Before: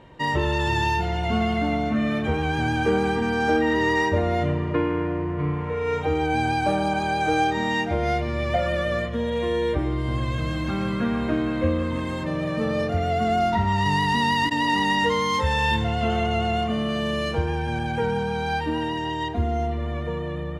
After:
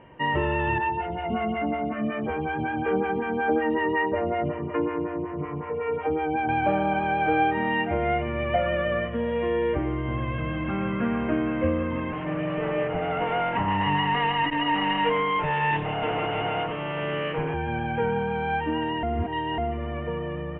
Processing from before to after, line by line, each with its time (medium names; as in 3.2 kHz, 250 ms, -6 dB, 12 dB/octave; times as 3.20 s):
0.78–6.49 s: lamp-driven phase shifter 5.4 Hz
12.12–17.54 s: comb filter that takes the minimum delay 6.6 ms
19.03–19.58 s: reverse
whole clip: Chebyshev low-pass 3 kHz, order 6; bass shelf 75 Hz -8 dB